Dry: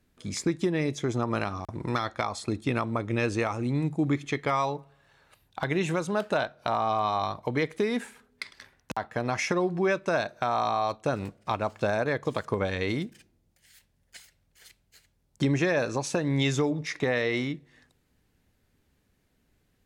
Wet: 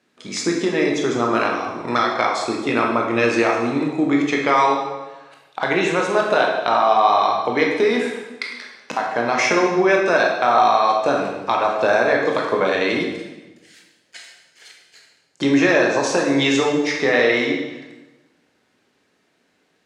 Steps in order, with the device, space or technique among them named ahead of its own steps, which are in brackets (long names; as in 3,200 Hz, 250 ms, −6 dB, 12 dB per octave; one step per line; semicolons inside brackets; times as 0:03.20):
supermarket ceiling speaker (band-pass filter 330–6,600 Hz; convolution reverb RT60 1.2 s, pre-delay 16 ms, DRR −1 dB)
level +8.5 dB